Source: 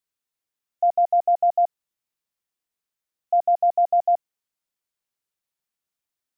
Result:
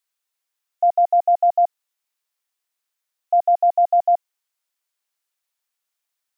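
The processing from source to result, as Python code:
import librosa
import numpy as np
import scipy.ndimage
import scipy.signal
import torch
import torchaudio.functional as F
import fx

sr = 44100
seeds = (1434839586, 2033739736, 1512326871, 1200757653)

y = scipy.signal.sosfilt(scipy.signal.bessel(2, 720.0, 'highpass', norm='mag', fs=sr, output='sos'), x)
y = F.gain(torch.from_numpy(y), 6.0).numpy()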